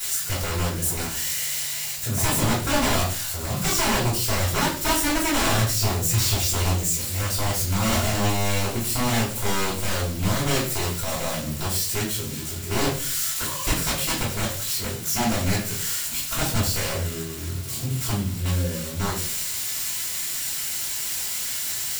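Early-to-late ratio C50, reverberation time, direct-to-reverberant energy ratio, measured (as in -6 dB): 6.0 dB, 0.40 s, -9.0 dB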